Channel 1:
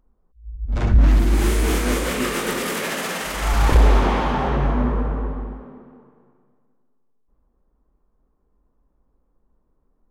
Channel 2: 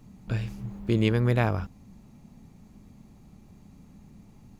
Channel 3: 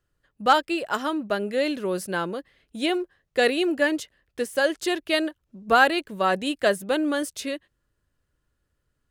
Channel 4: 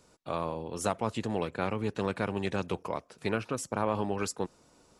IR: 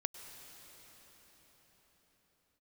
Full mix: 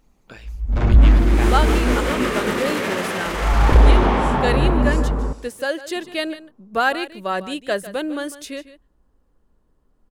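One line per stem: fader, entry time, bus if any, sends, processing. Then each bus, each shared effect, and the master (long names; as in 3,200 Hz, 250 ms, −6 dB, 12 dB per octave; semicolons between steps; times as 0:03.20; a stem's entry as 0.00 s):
+2.5 dB, 0.00 s, muted 0:05.33–0:05.95, no send, echo send −17.5 dB, high-shelf EQ 5,000 Hz −11 dB
+1.0 dB, 0.00 s, no send, no echo send, high-pass filter 630 Hz 6 dB per octave; harmonic and percussive parts rebalanced harmonic −11 dB
−1.5 dB, 1.05 s, no send, echo send −15 dB, no processing
−10.0 dB, 0.65 s, send −7 dB, no echo send, random phases in long frames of 200 ms; level that may fall only so fast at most 30 dB per second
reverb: on, pre-delay 93 ms
echo: single-tap delay 150 ms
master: no processing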